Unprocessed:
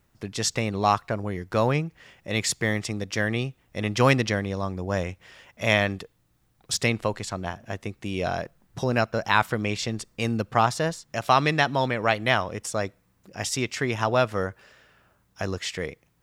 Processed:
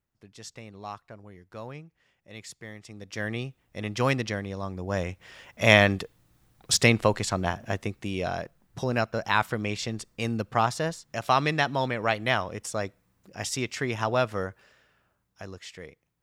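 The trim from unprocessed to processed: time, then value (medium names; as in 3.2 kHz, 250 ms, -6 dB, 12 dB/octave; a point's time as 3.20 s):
2.80 s -17.5 dB
3.26 s -5.5 dB
4.56 s -5.5 dB
5.68 s +4 dB
7.67 s +4 dB
8.27 s -3 dB
14.32 s -3 dB
15.51 s -12 dB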